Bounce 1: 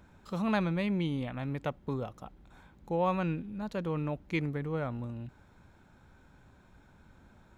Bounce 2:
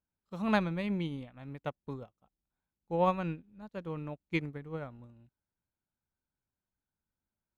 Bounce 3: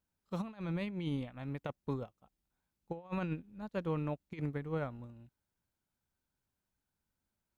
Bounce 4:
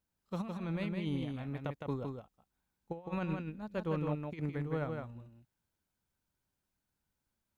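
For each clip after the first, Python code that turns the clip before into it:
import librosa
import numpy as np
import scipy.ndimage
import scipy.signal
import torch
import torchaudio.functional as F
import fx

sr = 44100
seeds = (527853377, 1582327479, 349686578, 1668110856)

y1 = fx.upward_expand(x, sr, threshold_db=-51.0, expansion=2.5)
y1 = F.gain(torch.from_numpy(y1), 3.0).numpy()
y2 = fx.over_compress(y1, sr, threshold_db=-36.0, ratio=-0.5)
y3 = y2 + 10.0 ** (-4.5 / 20.0) * np.pad(y2, (int(161 * sr / 1000.0), 0))[:len(y2)]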